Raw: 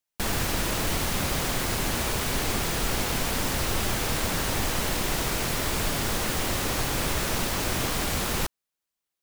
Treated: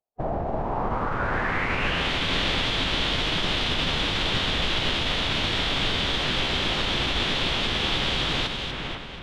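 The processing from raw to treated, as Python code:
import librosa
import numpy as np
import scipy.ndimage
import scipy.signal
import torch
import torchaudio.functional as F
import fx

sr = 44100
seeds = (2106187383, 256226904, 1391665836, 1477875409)

y = fx.filter_sweep_lowpass(x, sr, from_hz=710.0, to_hz=3400.0, start_s=0.51, end_s=2.12, q=4.1)
y = fx.echo_split(y, sr, split_hz=2600.0, low_ms=505, high_ms=241, feedback_pct=52, wet_db=-5.0)
y = fx.pitch_keep_formants(y, sr, semitones=-6.5)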